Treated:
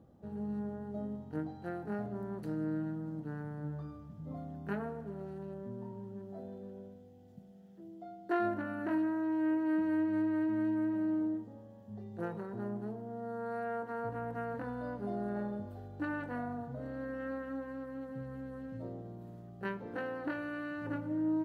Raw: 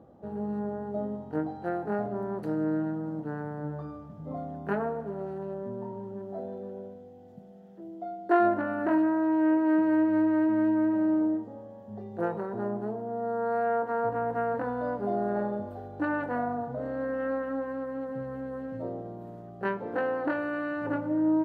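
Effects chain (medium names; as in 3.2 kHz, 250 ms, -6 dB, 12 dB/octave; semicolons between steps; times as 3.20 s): peaking EQ 690 Hz -11.5 dB 2.9 oct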